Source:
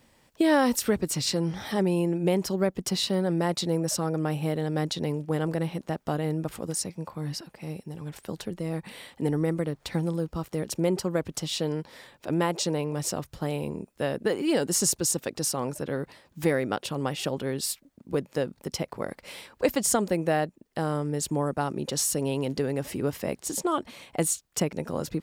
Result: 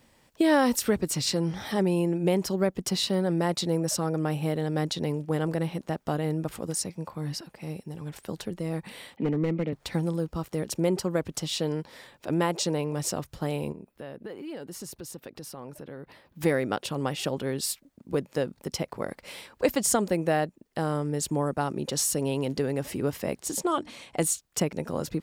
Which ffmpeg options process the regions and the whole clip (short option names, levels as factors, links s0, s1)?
-filter_complex "[0:a]asettb=1/sr,asplit=3[s0][s1][s2];[s0]atrim=end=9.164[s3];[s1]atrim=start=9.16:end=9.73,asetpts=PTS-STARTPTS,afade=t=in:d=0.004:c=qsin,afade=t=out:st=0.566:d=0.004:c=qsin,highpass=f=140:w=0.5412,highpass=f=140:w=1.3066,equalizer=f=210:t=q:w=4:g=7,equalizer=f=1100:t=q:w=4:g=-7,equalizer=f=1600:t=q:w=4:g=-8,equalizer=f=2300:t=q:w=4:g=9,lowpass=f=3300:w=0.5412,lowpass=f=3300:w=1.3066,aeval=exprs='clip(val(0),-1,0.0668)':c=same[s4];[s2]atrim=start=9.726[s5];[s3][s4]acrossfade=d=0.004:c1=hsin:c2=qsin[s6];[s6][s5]acrossfade=d=0.004:c1=qsin:c2=hsin,asettb=1/sr,asplit=3[s7][s8][s9];[s7]atrim=end=13.724[s10];[s8]atrim=start=13.72:end=16.41,asetpts=PTS-STARTPTS,afade=t=in:d=0.004:c=qsin,afade=t=out:st=2.686:d=0.004:c=qsin,equalizer=f=7300:t=o:w=1.1:g=-10.5,acompressor=threshold=0.00794:ratio=2.5:attack=3.2:release=140:knee=1:detection=peak[s11];[s9]atrim=start=16.406[s12];[s10][s11]acrossfade=d=0.004:c1=hsin:c2=qsin[s13];[s13][s12]acrossfade=d=0.004:c1=qsin:c2=hsin,asettb=1/sr,asplit=3[s14][s15][s16];[s14]atrim=end=23.694[s17];[s15]atrim=start=23.69:end=24.23,asetpts=PTS-STARTPTS,afade=t=in:d=0.004:c=qsin,afade=t=out:st=0.536:d=0.004:c=qsin,lowpass=8600,highshelf=f=5600:g=6,bandreject=f=60:t=h:w=6,bandreject=f=120:t=h:w=6,bandreject=f=180:t=h:w=6,bandreject=f=240:t=h:w=6,bandreject=f=300:t=h:w=6[s18];[s16]atrim=start=24.226[s19];[s17][s18]acrossfade=d=0.004:c1=hsin:c2=qsin[s20];[s20][s19]acrossfade=d=0.004:c1=qsin:c2=hsin"